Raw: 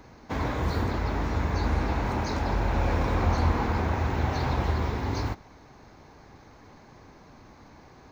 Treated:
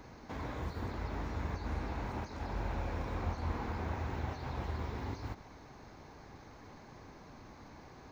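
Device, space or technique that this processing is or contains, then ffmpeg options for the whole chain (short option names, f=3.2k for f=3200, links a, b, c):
de-esser from a sidechain: -filter_complex "[0:a]asplit=2[a][b];[b]highpass=5.4k,apad=whole_len=357839[c];[a][c]sidechaincompress=threshold=-59dB:ratio=5:attack=0.65:release=67,volume=-2dB"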